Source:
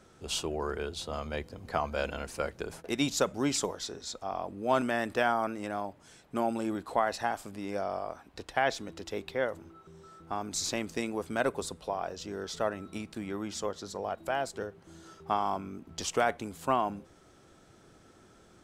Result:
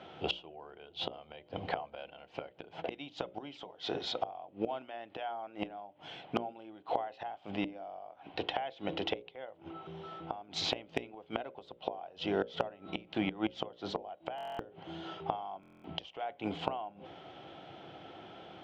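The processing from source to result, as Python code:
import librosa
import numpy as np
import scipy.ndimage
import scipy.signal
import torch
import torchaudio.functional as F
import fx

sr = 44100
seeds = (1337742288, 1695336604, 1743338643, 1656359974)

y = fx.cabinet(x, sr, low_hz=160.0, low_slope=12, high_hz=3300.0, hz=(230.0, 410.0, 750.0, 1200.0, 1700.0, 3100.0), db=(-9, -4, 8, -6, -6, 9))
y = fx.gate_flip(y, sr, shuts_db=-29.0, range_db=-25)
y = np.clip(y, -10.0 ** (-25.0 / 20.0), 10.0 ** (-25.0 / 20.0))
y = fx.hum_notches(y, sr, base_hz=60, count=10)
y = fx.buffer_glitch(y, sr, at_s=(14.36, 15.61), block=1024, repeats=9)
y = F.gain(torch.from_numpy(y), 10.5).numpy()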